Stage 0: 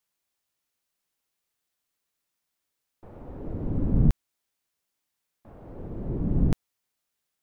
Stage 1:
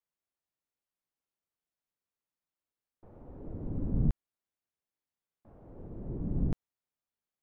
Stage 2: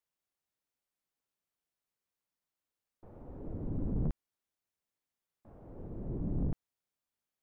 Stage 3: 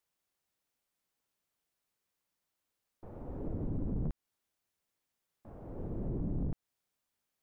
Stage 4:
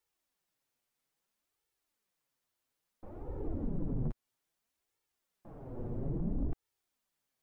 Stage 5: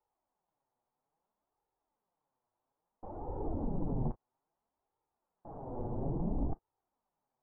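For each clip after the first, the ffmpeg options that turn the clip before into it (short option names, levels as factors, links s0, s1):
-af "highshelf=f=2000:g=-11,volume=0.422"
-af "asoftclip=type=tanh:threshold=0.0398,volume=1.12"
-af "acompressor=threshold=0.0141:ratio=6,volume=1.78"
-af "flanger=delay=2.2:depth=6.1:regen=4:speed=0.6:shape=sinusoidal,volume=1.5"
-af "lowpass=f=860:t=q:w=3.7" -ar 24000 -c:a aac -b:a 16k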